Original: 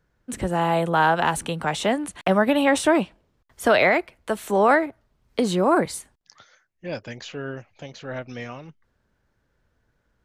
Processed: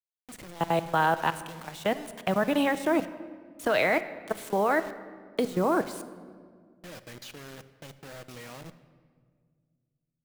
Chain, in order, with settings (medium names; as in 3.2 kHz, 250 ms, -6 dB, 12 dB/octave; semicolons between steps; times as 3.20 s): level held to a coarse grid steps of 21 dB; bit crusher 7-bit; simulated room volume 2800 m³, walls mixed, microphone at 0.59 m; trim -3 dB